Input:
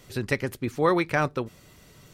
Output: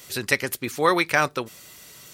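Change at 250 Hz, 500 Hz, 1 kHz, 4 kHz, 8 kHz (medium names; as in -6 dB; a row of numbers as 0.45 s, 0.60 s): -1.5 dB, +1.0 dB, +4.0 dB, +10.0 dB, +12.5 dB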